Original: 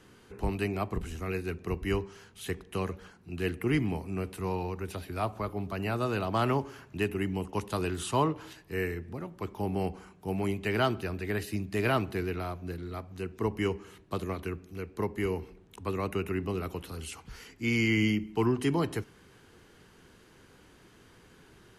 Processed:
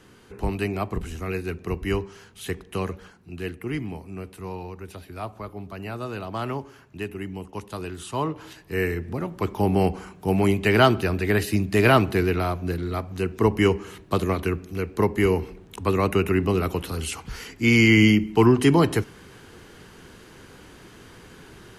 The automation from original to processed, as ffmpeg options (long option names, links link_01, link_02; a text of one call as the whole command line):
ffmpeg -i in.wav -af "volume=17dB,afade=type=out:start_time=2.94:duration=0.63:silence=0.473151,afade=type=in:start_time=8.11:duration=1.22:silence=0.237137" out.wav